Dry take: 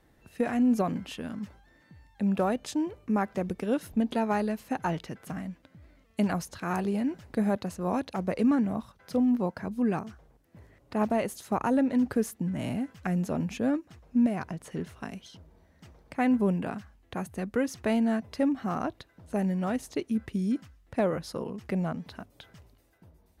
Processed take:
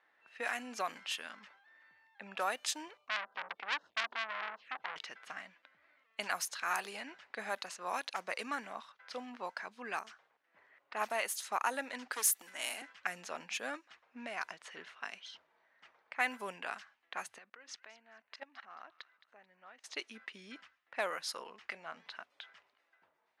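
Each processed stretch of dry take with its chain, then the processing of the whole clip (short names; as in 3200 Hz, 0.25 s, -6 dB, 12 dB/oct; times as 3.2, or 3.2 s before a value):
2.97–4.96 treble ducked by the level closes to 980 Hz, closed at -25.5 dBFS + envelope phaser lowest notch 270 Hz, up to 2300 Hz, full sweep at -28 dBFS + core saturation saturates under 2300 Hz
12.13–12.82 hard clip -23.5 dBFS + HPF 260 Hz 24 dB/oct + high shelf 5700 Hz +11 dB
17.38–19.84 LPF 7400 Hz + level quantiser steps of 23 dB + thin delay 0.218 s, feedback 36%, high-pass 1800 Hz, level -12 dB
21.6–22.1 compressor, threshold -31 dBFS + doubler 25 ms -12.5 dB
whole clip: HPF 1400 Hz 12 dB/oct; low-pass opened by the level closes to 1900 Hz, open at -38 dBFS; gain +4.5 dB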